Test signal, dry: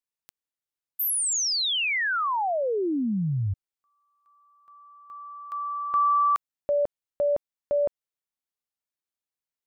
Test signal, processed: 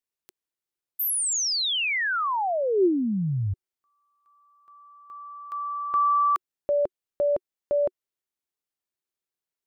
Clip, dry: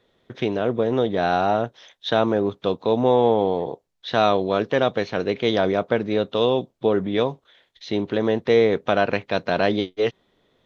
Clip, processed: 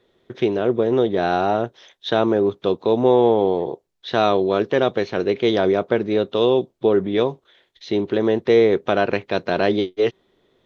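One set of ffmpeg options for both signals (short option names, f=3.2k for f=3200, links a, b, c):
-af "equalizer=f=370:t=o:w=0.35:g=8"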